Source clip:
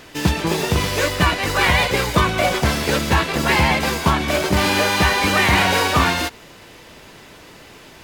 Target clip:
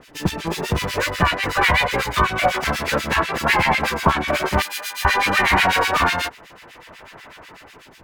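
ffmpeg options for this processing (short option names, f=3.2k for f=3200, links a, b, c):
-filter_complex "[0:a]aeval=exprs='0.794*(cos(1*acos(clip(val(0)/0.794,-1,1)))-cos(1*PI/2))+0.0562*(cos(4*acos(clip(val(0)/0.794,-1,1)))-cos(4*PI/2))':c=same,acrossover=split=670|2500[a][b][c];[b]dynaudnorm=f=210:g=7:m=12.5dB[d];[a][d][c]amix=inputs=3:normalize=0,acrossover=split=1500[e][f];[e]aeval=exprs='val(0)*(1-1/2+1/2*cos(2*PI*8.1*n/s))':c=same[g];[f]aeval=exprs='val(0)*(1-1/2-1/2*cos(2*PI*8.1*n/s))':c=same[h];[g][h]amix=inputs=2:normalize=0,asettb=1/sr,asplit=3[i][j][k];[i]atrim=end=4.624[l];[j]atrim=start=4.62:end=5.05,asetpts=PTS-STARTPTS,afade=t=in:d=0.004:c=qsin,afade=t=out:st=0.426:d=0.004:c=qsin,aderivative[m];[k]atrim=start=5.046[n];[l][m]acrossfade=d=0.004:c1=hsin:c2=qsin[o];[o][n]acrossfade=d=0.004:c1=qsin:c2=hsin,volume=-1dB"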